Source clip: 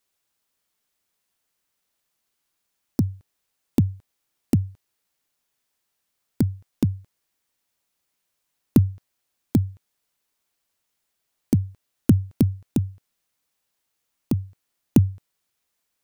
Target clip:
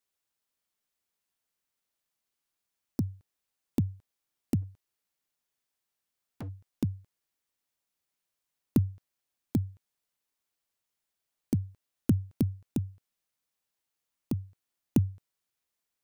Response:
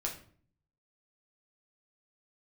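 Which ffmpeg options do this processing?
-filter_complex "[0:a]asplit=3[s0][s1][s2];[s0]afade=t=out:st=4.61:d=0.02[s3];[s1]volume=25.1,asoftclip=hard,volume=0.0398,afade=t=in:st=4.61:d=0.02,afade=t=out:st=6.48:d=0.02[s4];[s2]afade=t=in:st=6.48:d=0.02[s5];[s3][s4][s5]amix=inputs=3:normalize=0,volume=0.376"

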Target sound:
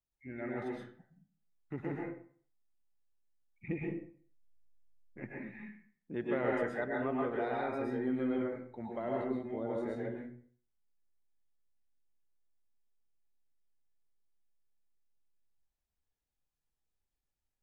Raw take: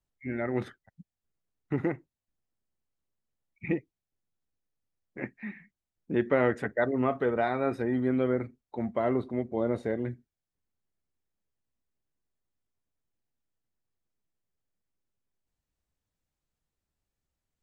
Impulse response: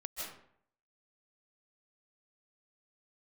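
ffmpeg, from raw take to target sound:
-filter_complex "[0:a]asettb=1/sr,asplit=3[s0][s1][s2];[s0]atrim=end=3.684[s3];[s1]atrim=start=3.68:end=5.48,asetpts=PTS-STARTPTS,afade=t=in:d=0.004:c=qsin,afade=t=out:st=1.796:d=0.004:c=qsin,lowshelf=f=160:g=11.5[s4];[s2]atrim=start=5.476[s5];[s3][s4]acrossfade=d=0.004:c1=hsin:c2=qsin[s6];[s6][s5]acrossfade=d=0.004:c1=qsin:c2=hsin[s7];[1:a]atrim=start_sample=2205,asetrate=57330,aresample=44100[s8];[s7][s8]afir=irnorm=-1:irlink=0,volume=0.631"

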